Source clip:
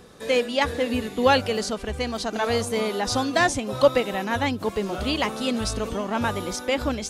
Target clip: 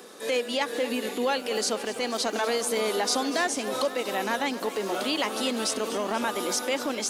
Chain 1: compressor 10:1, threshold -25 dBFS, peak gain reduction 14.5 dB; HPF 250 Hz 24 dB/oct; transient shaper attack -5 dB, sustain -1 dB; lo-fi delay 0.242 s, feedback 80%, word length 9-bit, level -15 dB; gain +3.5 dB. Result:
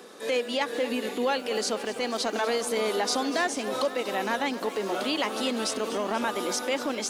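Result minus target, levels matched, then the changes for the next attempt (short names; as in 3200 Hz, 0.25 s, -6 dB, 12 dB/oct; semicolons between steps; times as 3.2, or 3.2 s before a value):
8000 Hz band -2.5 dB
add after HPF: high shelf 6500 Hz +6.5 dB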